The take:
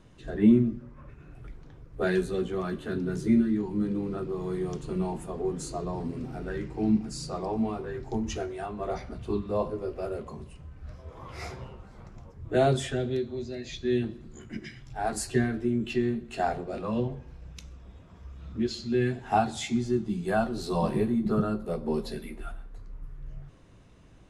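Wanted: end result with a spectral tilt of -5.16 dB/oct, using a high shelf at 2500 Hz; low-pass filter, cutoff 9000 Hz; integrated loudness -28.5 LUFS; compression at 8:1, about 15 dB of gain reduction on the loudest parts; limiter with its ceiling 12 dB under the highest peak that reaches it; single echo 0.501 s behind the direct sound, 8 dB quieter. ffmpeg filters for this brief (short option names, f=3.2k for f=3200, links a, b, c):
-af "lowpass=9k,highshelf=f=2.5k:g=7,acompressor=threshold=-30dB:ratio=8,alimiter=level_in=7dB:limit=-24dB:level=0:latency=1,volume=-7dB,aecho=1:1:501:0.398,volume=11.5dB"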